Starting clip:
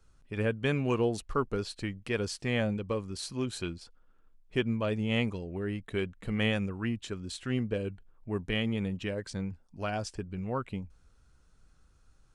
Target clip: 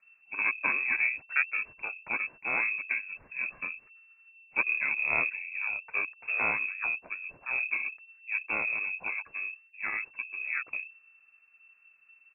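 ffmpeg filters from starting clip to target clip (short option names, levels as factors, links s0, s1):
-filter_complex "[0:a]asplit=2[s0][s1];[s1]asetrate=29433,aresample=44100,atempo=1.49831,volume=0.794[s2];[s0][s2]amix=inputs=2:normalize=0,aeval=exprs='0.266*(cos(1*acos(clip(val(0)/0.266,-1,1)))-cos(1*PI/2))+0.0119*(cos(3*acos(clip(val(0)/0.266,-1,1)))-cos(3*PI/2))+0.0075*(cos(7*acos(clip(val(0)/0.266,-1,1)))-cos(7*PI/2))':c=same,lowpass=f=2300:t=q:w=0.5098,lowpass=f=2300:t=q:w=0.6013,lowpass=f=2300:t=q:w=0.9,lowpass=f=2300:t=q:w=2.563,afreqshift=-2700"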